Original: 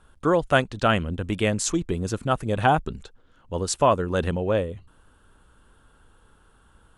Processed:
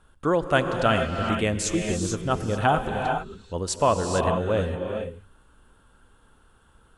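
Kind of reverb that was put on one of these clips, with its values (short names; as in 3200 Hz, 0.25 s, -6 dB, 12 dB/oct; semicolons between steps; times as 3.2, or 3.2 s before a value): non-linear reverb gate 0.48 s rising, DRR 3 dB; gain -2 dB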